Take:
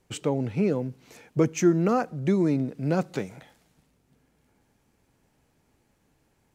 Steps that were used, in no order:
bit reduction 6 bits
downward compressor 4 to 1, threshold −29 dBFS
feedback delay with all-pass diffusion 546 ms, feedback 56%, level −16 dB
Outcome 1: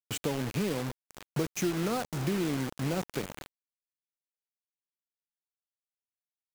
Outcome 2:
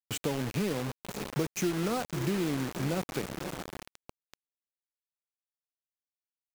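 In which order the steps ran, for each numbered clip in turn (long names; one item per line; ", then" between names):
downward compressor, then feedback delay with all-pass diffusion, then bit reduction
feedback delay with all-pass diffusion, then downward compressor, then bit reduction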